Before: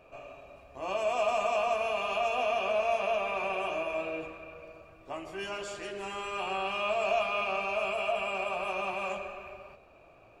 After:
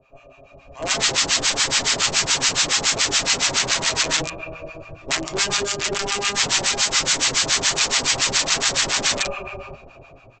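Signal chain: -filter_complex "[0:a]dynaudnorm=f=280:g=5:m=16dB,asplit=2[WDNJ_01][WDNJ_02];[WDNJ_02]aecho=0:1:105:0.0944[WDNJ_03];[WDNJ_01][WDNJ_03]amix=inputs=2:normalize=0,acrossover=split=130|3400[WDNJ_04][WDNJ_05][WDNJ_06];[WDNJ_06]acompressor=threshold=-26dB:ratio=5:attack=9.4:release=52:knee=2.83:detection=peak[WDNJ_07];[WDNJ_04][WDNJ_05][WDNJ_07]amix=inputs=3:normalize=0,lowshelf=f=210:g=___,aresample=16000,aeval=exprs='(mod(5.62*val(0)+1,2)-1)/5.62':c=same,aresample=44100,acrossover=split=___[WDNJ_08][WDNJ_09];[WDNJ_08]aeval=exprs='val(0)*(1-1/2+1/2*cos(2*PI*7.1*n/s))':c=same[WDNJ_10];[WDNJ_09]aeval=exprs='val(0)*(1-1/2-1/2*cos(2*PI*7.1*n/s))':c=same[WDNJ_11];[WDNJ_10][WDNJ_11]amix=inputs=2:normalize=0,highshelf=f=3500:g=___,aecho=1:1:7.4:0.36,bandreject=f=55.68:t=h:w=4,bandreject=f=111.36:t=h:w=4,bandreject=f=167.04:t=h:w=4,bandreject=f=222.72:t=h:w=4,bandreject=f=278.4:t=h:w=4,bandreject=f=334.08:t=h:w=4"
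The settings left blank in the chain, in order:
9, 860, 7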